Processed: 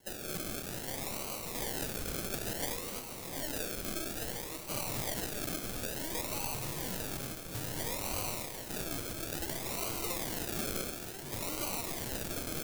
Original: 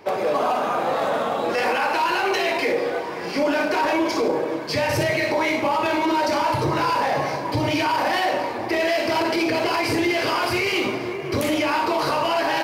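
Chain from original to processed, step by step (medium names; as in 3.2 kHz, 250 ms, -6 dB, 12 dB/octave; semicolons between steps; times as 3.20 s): one-sided wavefolder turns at -20.5 dBFS; high-order bell 500 Hz -8 dB 2.5 oct; decimation with a swept rate 36×, swing 60% 0.58 Hz; pre-emphasis filter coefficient 0.8; two-band feedback delay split 900 Hz, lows 676 ms, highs 256 ms, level -12.5 dB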